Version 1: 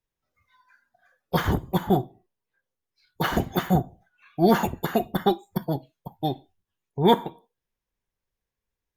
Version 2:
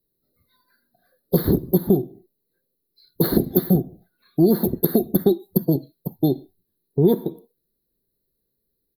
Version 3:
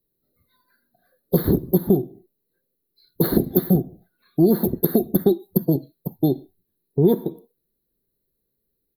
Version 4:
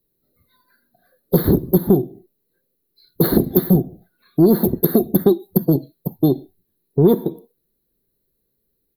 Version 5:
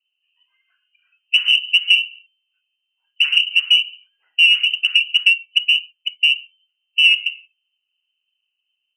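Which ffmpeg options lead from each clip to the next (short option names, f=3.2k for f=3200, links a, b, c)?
-af "firequalizer=gain_entry='entry(100,0);entry(150,8);entry(260,10);entry(370,12);entry(830,-11);entry(2000,-10);entry(2800,-27);entry(4100,11);entry(6700,-29);entry(11000,15)':delay=0.05:min_phase=1,acompressor=threshold=-18dB:ratio=4,volume=3.5dB"
-af "equalizer=f=5.9k:t=o:w=0.79:g=-8"
-af "acontrast=35,volume=-1dB"
-af "lowpass=f=2.6k:t=q:w=0.5098,lowpass=f=2.6k:t=q:w=0.6013,lowpass=f=2.6k:t=q:w=0.9,lowpass=f=2.6k:t=q:w=2.563,afreqshift=-3100,aexciter=amount=2.6:drive=3.4:freq=2.4k,volume=-6.5dB"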